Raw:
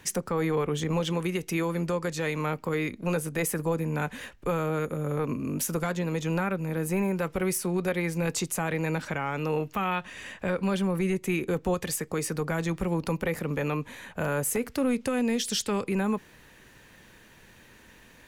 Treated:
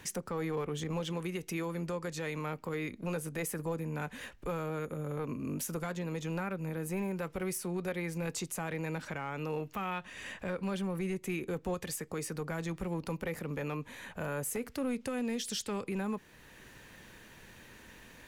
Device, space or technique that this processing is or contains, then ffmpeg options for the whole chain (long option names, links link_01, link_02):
clipper into limiter: -af "asoftclip=type=hard:threshold=-20.5dB,alimiter=level_in=4.5dB:limit=-24dB:level=0:latency=1:release=480,volume=-4.5dB"